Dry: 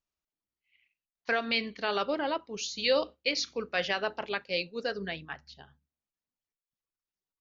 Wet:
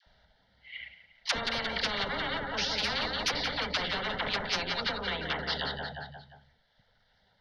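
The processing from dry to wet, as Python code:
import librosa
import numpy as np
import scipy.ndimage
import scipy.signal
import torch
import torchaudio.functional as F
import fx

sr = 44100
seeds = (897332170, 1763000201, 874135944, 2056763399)

p1 = scipy.signal.sosfilt(scipy.signal.butter(4, 4100.0, 'lowpass', fs=sr, output='sos'), x)
p2 = fx.cheby_harmonics(p1, sr, harmonics=(3, 5), levels_db=(-21, -6), full_scale_db=-15.5)
p3 = fx.high_shelf(p2, sr, hz=2700.0, db=-3.5)
p4 = fx.fixed_phaser(p3, sr, hz=1700.0, stages=8)
p5 = fx.dispersion(p4, sr, late='lows', ms=68.0, hz=620.0)
p6 = fx.env_lowpass_down(p5, sr, base_hz=1000.0, full_db=-26.0)
p7 = p6 + fx.echo_feedback(p6, sr, ms=176, feedback_pct=44, wet_db=-14, dry=0)
p8 = fx.spectral_comp(p7, sr, ratio=10.0)
y = p8 * librosa.db_to_amplitude(1.5)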